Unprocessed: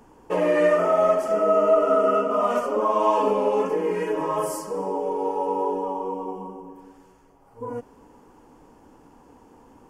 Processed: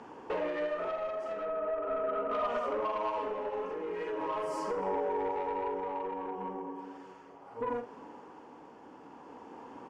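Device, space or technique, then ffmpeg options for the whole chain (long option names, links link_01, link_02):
AM radio: -filter_complex "[0:a]highpass=160,lowpass=3800,acompressor=threshold=-33dB:ratio=8,asoftclip=type=tanh:threshold=-31.5dB,tremolo=f=0.4:d=0.38,asettb=1/sr,asplit=3[link_01][link_02][link_03];[link_01]atrim=end=1.454[link_04];[link_02]atrim=start=1.45:end=2.31,asetpts=PTS-STARTPTS,afade=type=in:duration=0.004:curve=qsin,afade=type=out:start_time=0.856:duration=0.004:curve=qsin,lowpass=1800[link_05];[link_03]atrim=start=2.306[link_06];[link_04][link_05]acrossfade=duration=0.004:curve1=hsin:curve2=qsin[link_07];[link_07][link_06]acrossfade=duration=0.004:curve1=qsin:curve2=hsin,equalizer=frequency=160:width_type=o:width=2.5:gain=-5.5,asplit=2[link_08][link_09];[link_09]adelay=47,volume=-9.5dB[link_10];[link_08][link_10]amix=inputs=2:normalize=0,volume=6.5dB"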